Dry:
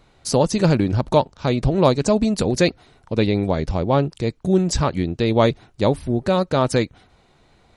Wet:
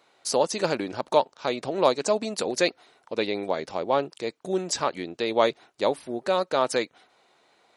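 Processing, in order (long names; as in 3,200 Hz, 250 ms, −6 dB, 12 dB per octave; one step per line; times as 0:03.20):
high-pass filter 440 Hz 12 dB per octave
level −2.5 dB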